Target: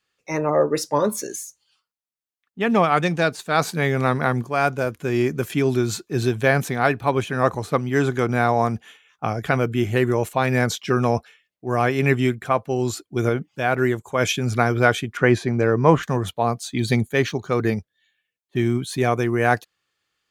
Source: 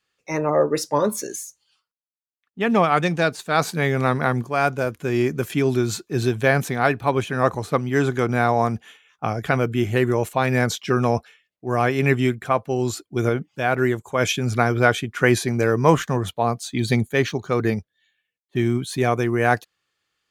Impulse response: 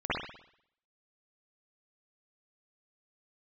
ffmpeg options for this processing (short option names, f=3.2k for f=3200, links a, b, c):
-filter_complex "[0:a]asettb=1/sr,asplit=3[a][b][c];[a]atrim=end=15.174[d];[b]atrim=start=15.17:end=16.03,asetpts=PTS-STARTPTS,afade=t=in:d=0.004:c=qsin,afade=t=out:st=0.856:d=0.004:c=qsin,aemphasis=mode=reproduction:type=75fm[e];[c]atrim=start=16.026[f];[d][e]acrossfade=d=0.004:c1=hsin:c2=qsin[g];[g][f]acrossfade=d=0.004:c1=qsin:c2=hsin"